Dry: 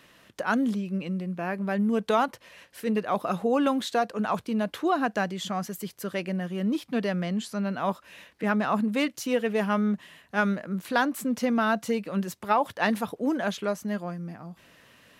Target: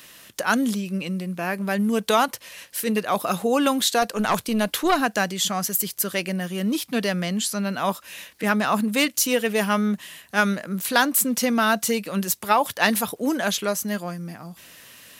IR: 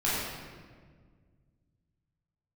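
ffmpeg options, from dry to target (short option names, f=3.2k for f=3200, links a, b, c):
-filter_complex "[0:a]asettb=1/sr,asplit=3[a][b][c];[a]atrim=end=4.024[d];[b]atrim=start=4.02:end=5.01,asetpts=PTS-STARTPTS,afade=t=in:d=0.004:c=qsin,afade=t=out:st=0.986:d=0.004:c=qsin,aeval=exprs='0.2*(cos(1*acos(clip(val(0)/0.2,-1,1)))-cos(1*PI/2))+0.0562*(cos(2*acos(clip(val(0)/0.2,-1,1)))-cos(2*PI/2))+0.00891*(cos(5*acos(clip(val(0)/0.2,-1,1)))-cos(5*PI/2))':c=same[e];[c]atrim=start=5.006[f];[d][e]acrossfade=d=0.004:c1=hsin:c2=qsin[g];[g][f]acrossfade=d=0.004:c1=qsin:c2=hsin,crystalizer=i=4.5:c=0,volume=2.5dB"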